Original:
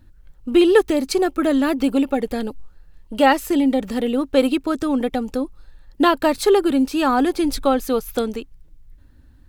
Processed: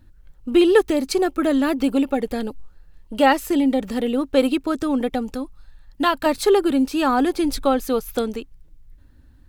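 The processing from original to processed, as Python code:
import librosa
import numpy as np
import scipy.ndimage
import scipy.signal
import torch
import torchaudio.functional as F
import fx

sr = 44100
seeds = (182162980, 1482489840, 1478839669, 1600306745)

y = fx.peak_eq(x, sr, hz=410.0, db=-11.0, octaves=0.79, at=(5.35, 6.26))
y = y * 10.0 ** (-1.0 / 20.0)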